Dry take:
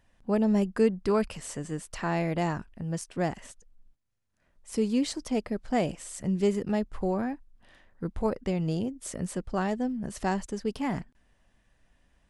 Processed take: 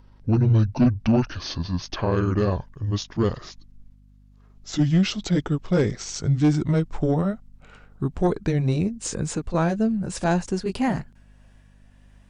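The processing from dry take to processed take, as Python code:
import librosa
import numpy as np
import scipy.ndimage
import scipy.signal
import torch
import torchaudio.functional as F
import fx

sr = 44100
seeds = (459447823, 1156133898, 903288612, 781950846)

y = fx.pitch_glide(x, sr, semitones=-11.0, runs='ending unshifted')
y = fx.add_hum(y, sr, base_hz=50, snr_db=30)
y = fx.fold_sine(y, sr, drive_db=5, ceiling_db=-12.0)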